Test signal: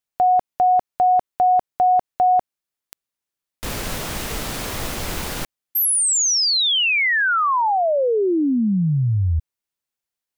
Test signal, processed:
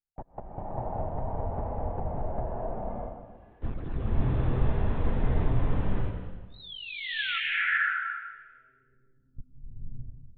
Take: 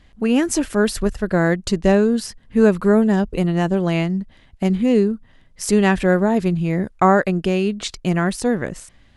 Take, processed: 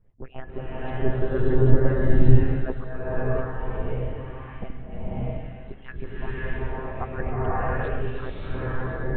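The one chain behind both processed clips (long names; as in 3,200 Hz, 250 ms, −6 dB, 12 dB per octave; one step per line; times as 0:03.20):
harmonic-percussive split with one part muted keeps percussive
hollow resonant body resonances 220/430/1,000/1,700 Hz, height 8 dB, ringing for 70 ms
low-pass that shuts in the quiet parts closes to 2,300 Hz, open at −20.5 dBFS
high-shelf EQ 2,500 Hz −11.5 dB
one-pitch LPC vocoder at 8 kHz 130 Hz
spectral tilt −3 dB per octave
slow-attack reverb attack 640 ms, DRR −9.5 dB
level −12 dB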